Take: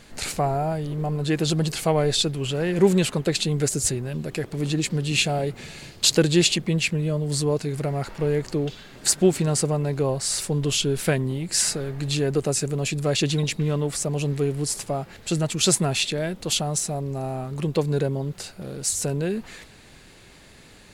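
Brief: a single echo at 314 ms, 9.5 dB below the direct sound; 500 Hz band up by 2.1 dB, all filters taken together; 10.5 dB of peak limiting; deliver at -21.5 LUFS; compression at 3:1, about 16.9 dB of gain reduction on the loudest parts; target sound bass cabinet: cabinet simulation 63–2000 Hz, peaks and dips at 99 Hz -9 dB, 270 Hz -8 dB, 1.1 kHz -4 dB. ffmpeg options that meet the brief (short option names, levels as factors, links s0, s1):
-af "equalizer=f=500:t=o:g=3.5,acompressor=threshold=0.02:ratio=3,alimiter=level_in=1.41:limit=0.0631:level=0:latency=1,volume=0.708,highpass=f=63:w=0.5412,highpass=f=63:w=1.3066,equalizer=f=99:t=q:w=4:g=-9,equalizer=f=270:t=q:w=4:g=-8,equalizer=f=1100:t=q:w=4:g=-4,lowpass=f=2000:w=0.5412,lowpass=f=2000:w=1.3066,aecho=1:1:314:0.335,volume=6.68"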